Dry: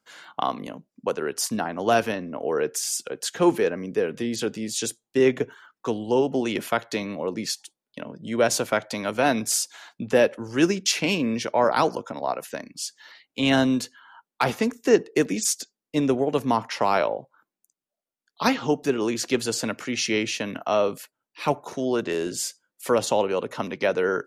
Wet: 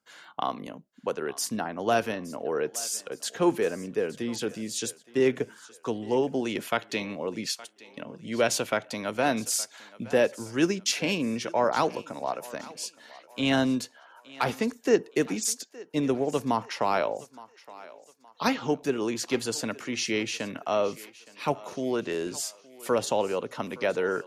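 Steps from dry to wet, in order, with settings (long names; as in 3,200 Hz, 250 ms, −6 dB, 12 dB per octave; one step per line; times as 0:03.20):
0:06.64–0:08.74: dynamic equaliser 2,800 Hz, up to +6 dB, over −44 dBFS, Q 1.5
feedback echo with a high-pass in the loop 868 ms, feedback 43%, high-pass 420 Hz, level −18.5 dB
level −4 dB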